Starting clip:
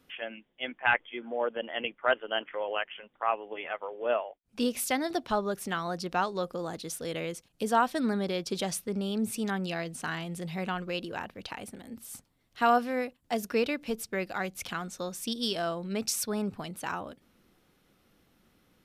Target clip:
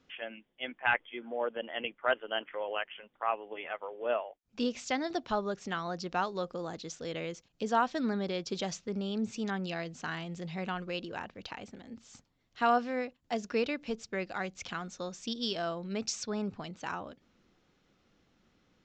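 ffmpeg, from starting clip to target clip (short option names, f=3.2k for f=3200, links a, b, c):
-af "aresample=16000,aresample=44100,volume=-3dB"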